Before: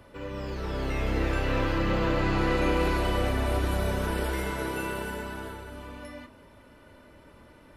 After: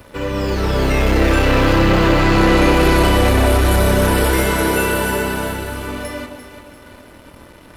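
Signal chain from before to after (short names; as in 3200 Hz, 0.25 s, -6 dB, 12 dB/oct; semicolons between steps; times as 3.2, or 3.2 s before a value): high shelf 6100 Hz +7 dB; sample leveller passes 2; echo with dull and thin repeats by turns 0.172 s, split 840 Hz, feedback 66%, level -7 dB; gain +7 dB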